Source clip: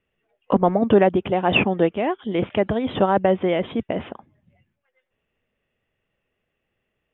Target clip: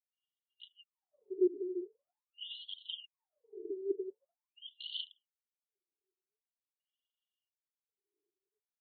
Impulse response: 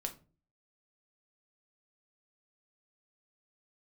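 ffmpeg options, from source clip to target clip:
-filter_complex "[0:a]highshelf=frequency=2300:gain=12,agate=range=-12dB:threshold=-32dB:ratio=16:detection=peak,adynamicsmooth=sensitivity=7:basefreq=2200,asplit=2[link_01][link_02];[1:a]atrim=start_sample=2205,asetrate=43659,aresample=44100[link_03];[link_02][link_03]afir=irnorm=-1:irlink=0,volume=-10dB[link_04];[link_01][link_04]amix=inputs=2:normalize=0,atempo=0.81,areverse,acompressor=threshold=-27dB:ratio=5,areverse,aphaser=in_gain=1:out_gain=1:delay=2.6:decay=0.6:speed=1.4:type=triangular,asoftclip=type=tanh:threshold=-26dB,afftfilt=real='re*(1-between(b*sr/4096,450,2800))':imag='im*(1-between(b*sr/4096,450,2800))':win_size=4096:overlap=0.75,afftfilt=real='re*between(b*sr/1024,400*pow(3200/400,0.5+0.5*sin(2*PI*0.45*pts/sr))/1.41,400*pow(3200/400,0.5+0.5*sin(2*PI*0.45*pts/sr))*1.41)':imag='im*between(b*sr/1024,400*pow(3200/400,0.5+0.5*sin(2*PI*0.45*pts/sr))/1.41,400*pow(3200/400,0.5+0.5*sin(2*PI*0.45*pts/sr))*1.41)':win_size=1024:overlap=0.75,volume=4dB"

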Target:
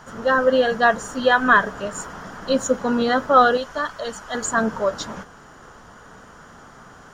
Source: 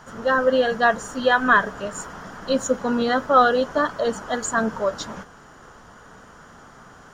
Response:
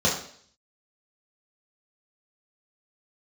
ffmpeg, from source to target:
-filter_complex "[0:a]asettb=1/sr,asplit=3[link_01][link_02][link_03];[link_01]atrim=end=3.574[link_04];[link_02]atrim=start=3.57:end=4.35,asetpts=PTS-STARTPTS,afade=type=in:duration=0.004:curve=qsin,afade=type=out:start_time=0.776:duration=0.004:curve=qsin,equalizer=frequency=280:width=0.34:gain=-10.5[link_05];[link_03]atrim=start=4.346[link_06];[link_04][link_05]acrossfade=duration=0.004:curve1=hsin:curve2=qsin[link_07];[link_07][link_06]acrossfade=duration=0.004:curve1=qsin:curve2=hsin,volume=1.5dB"

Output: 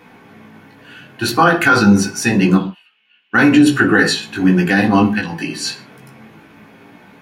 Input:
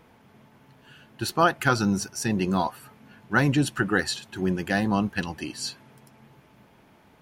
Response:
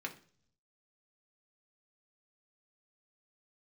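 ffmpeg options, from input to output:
-filter_complex "[0:a]asettb=1/sr,asplit=3[link_01][link_02][link_03];[link_01]atrim=end=5.154[link_04];[link_02]atrim=start=5.15:end=5.55,asetpts=PTS-STARTPTS,afade=type=in:duration=0.004:curve=qsin,afade=type=out:start_time=0.396:duration=0.004:curve=qsin,acompressor=threshold=-31dB:ratio=6[link_05];[link_03]atrim=start=5.546[link_06];[link_04][link_05]acrossfade=duration=0.004:curve1=hsin:curve2=qsin[link_07];[link_07][link_06]acrossfade=duration=0.004:curve1=qsin:curve2=hsin,flanger=delay=16.5:depth=2.1:speed=0.85,asplit=3[link_08][link_09][link_10];[link_08]afade=type=out:start_time=2.56:duration=0.02[link_11];[link_09]bandpass=frequency=2900:width_type=q:width=11:csg=0,afade=type=in:start_time=2.56:duration=0.02,afade=type=out:start_time=3.33:duration=0.02[link_12];[link_10]afade=type=in:start_time=3.33:duration=0.02[link_13];[link_11][link_12][link_13]amix=inputs=3:normalize=0[link_14];[1:a]atrim=start_sample=2205,afade=type=out:start_time=0.22:duration=0.01,atrim=end_sample=10143[link_15];[link_14][link_15]afir=irnorm=-1:irlink=0,alimiter=level_in=17.5dB:limit=-1dB:release=50:level=0:latency=1,volume=-1dB"

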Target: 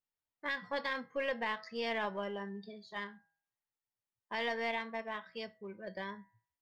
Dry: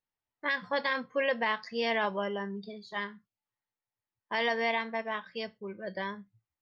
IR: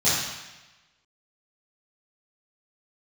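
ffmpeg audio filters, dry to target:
-filter_complex "[0:a]bandreject=frequency=162.3:width_type=h:width=4,bandreject=frequency=324.6:width_type=h:width=4,bandreject=frequency=486.9:width_type=h:width=4,bandreject=frequency=649.2:width_type=h:width=4,bandreject=frequency=811.5:width_type=h:width=4,bandreject=frequency=973.8:width_type=h:width=4,bandreject=frequency=1136.1:width_type=h:width=4,bandreject=frequency=1298.4:width_type=h:width=4,bandreject=frequency=1460.7:width_type=h:width=4,bandreject=frequency=1623:width_type=h:width=4,bandreject=frequency=1785.3:width_type=h:width=4,bandreject=frequency=1947.6:width_type=h:width=4,bandreject=frequency=2109.9:width_type=h:width=4,asplit=2[link_01][link_02];[link_02]aeval=exprs='clip(val(0),-1,0.0168)':channel_layout=same,volume=-8dB[link_03];[link_01][link_03]amix=inputs=2:normalize=0,volume=-8.5dB"

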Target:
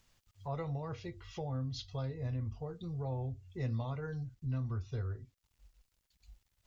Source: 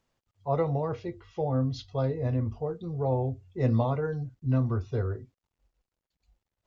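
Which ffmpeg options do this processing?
ffmpeg -i in.wav -af "equalizer=frequency=460:width=0.33:gain=-13,acompressor=threshold=-58dB:ratio=2,volume=11.5dB" out.wav

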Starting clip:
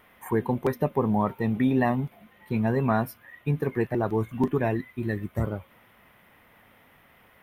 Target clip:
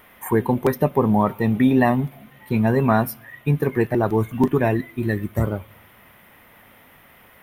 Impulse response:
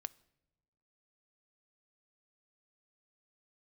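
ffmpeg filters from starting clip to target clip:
-filter_complex "[0:a]asplit=2[link_01][link_02];[1:a]atrim=start_sample=2205,highshelf=frequency=5900:gain=10.5[link_03];[link_02][link_03]afir=irnorm=-1:irlink=0,volume=3.5dB[link_04];[link_01][link_04]amix=inputs=2:normalize=0"

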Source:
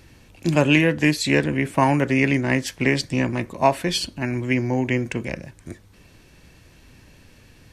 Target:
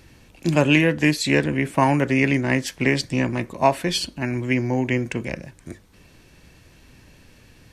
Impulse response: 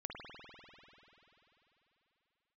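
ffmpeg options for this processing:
-af "bandreject=frequency=50:width_type=h:width=6,bandreject=frequency=100:width_type=h:width=6"

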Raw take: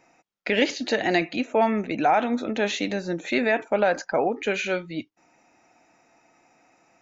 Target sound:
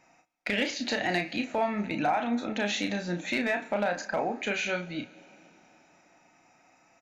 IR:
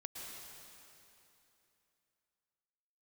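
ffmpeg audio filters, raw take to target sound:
-filter_complex "[0:a]equalizer=frequency=410:width=1.9:gain=-8,acompressor=threshold=-25dB:ratio=2.5,asoftclip=type=hard:threshold=-18dB,asplit=2[link_01][link_02];[link_02]adelay=34,volume=-6dB[link_03];[link_01][link_03]amix=inputs=2:normalize=0,aecho=1:1:67|134|201|268:0.075|0.039|0.0203|0.0105,asplit=2[link_04][link_05];[1:a]atrim=start_sample=2205,asetrate=33516,aresample=44100[link_06];[link_05][link_06]afir=irnorm=-1:irlink=0,volume=-18.5dB[link_07];[link_04][link_07]amix=inputs=2:normalize=0,aresample=32000,aresample=44100,volume=-2dB"

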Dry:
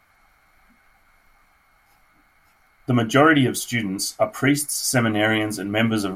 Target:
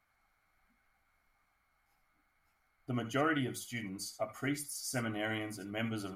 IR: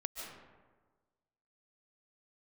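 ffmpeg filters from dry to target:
-filter_complex "[1:a]atrim=start_sample=2205,atrim=end_sample=6174,asetrate=79380,aresample=44100[link_01];[0:a][link_01]afir=irnorm=-1:irlink=0,volume=-9dB"

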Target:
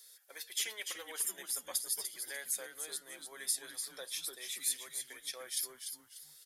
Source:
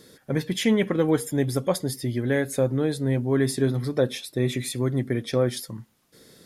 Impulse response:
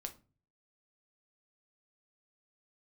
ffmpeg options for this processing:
-filter_complex "[0:a]aderivative,acrossover=split=420|2800[link_01][link_02][link_03];[link_01]acrusher=bits=2:mix=0:aa=0.5[link_04];[link_04][link_02][link_03]amix=inputs=3:normalize=0,asplit=5[link_05][link_06][link_07][link_08][link_09];[link_06]adelay=295,afreqshift=-120,volume=-7dB[link_10];[link_07]adelay=590,afreqshift=-240,volume=-17.2dB[link_11];[link_08]adelay=885,afreqshift=-360,volume=-27.3dB[link_12];[link_09]adelay=1180,afreqshift=-480,volume=-37.5dB[link_13];[link_05][link_10][link_11][link_12][link_13]amix=inputs=5:normalize=0,volume=-1dB"

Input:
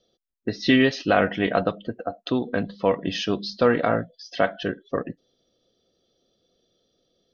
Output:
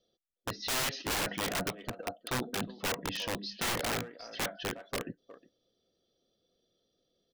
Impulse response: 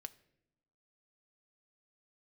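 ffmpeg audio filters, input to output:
-filter_complex "[0:a]asplit=2[link_01][link_02];[link_02]adelay=360,highpass=300,lowpass=3400,asoftclip=type=hard:threshold=-16dB,volume=-17dB[link_03];[link_01][link_03]amix=inputs=2:normalize=0,aeval=exprs='(mod(8.41*val(0)+1,2)-1)/8.41':channel_layout=same,volume=-8dB"

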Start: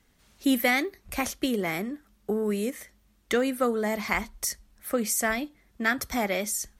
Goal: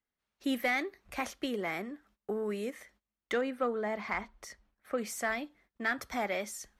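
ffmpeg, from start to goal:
ffmpeg -i in.wav -filter_complex "[0:a]asettb=1/sr,asplit=3[link_01][link_02][link_03];[link_01]atrim=end=3.414[link_04];[link_02]atrim=start=3.41:end=4.98,asetpts=PTS-STARTPTS,afade=type=in:duration=0.004:curve=qsin,afade=type=out:start_time=1.566:duration=0.004:curve=qsin,lowpass=frequency=2600:poles=1[link_05];[link_03]atrim=start=4.976[link_06];[link_04][link_05]acrossfade=duration=0.004:curve1=hsin:curve2=qsin[link_07];[link_07][link_06]acrossfade=duration=0.004:curve1=qsin:curve2=hsin,agate=range=-19dB:threshold=-56dB:ratio=16:detection=peak,asplit=2[link_08][link_09];[link_09]highpass=frequency=720:poles=1,volume=11dB,asoftclip=type=tanh:threshold=-10dB[link_10];[link_08][link_10]amix=inputs=2:normalize=0,lowpass=frequency=1900:poles=1,volume=-6dB,volume=-7.5dB" out.wav

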